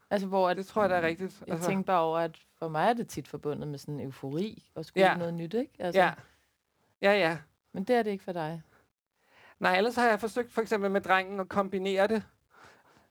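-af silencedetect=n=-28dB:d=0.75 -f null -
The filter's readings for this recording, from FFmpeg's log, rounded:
silence_start: 6.13
silence_end: 7.03 | silence_duration: 0.90
silence_start: 8.52
silence_end: 9.63 | silence_duration: 1.11
silence_start: 12.19
silence_end: 13.11 | silence_duration: 0.92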